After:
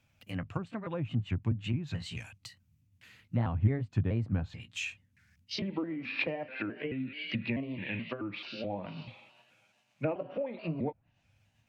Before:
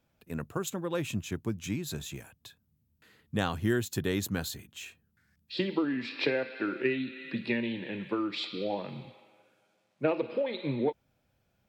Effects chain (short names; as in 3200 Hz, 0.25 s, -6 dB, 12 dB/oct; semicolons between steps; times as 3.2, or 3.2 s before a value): trilling pitch shifter +2.5 st, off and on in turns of 0.216 s; treble ducked by the level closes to 780 Hz, closed at -29 dBFS; fifteen-band EQ 100 Hz +10 dB, 400 Hz -10 dB, 2500 Hz +10 dB, 6300 Hz +5 dB